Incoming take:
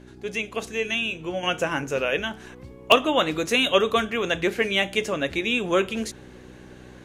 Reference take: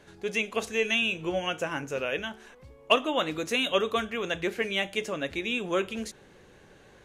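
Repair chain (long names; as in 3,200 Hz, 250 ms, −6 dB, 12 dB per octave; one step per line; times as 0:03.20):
hum removal 62.3 Hz, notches 6
repair the gap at 0:02.92, 1.5 ms
level 0 dB, from 0:01.43 −6 dB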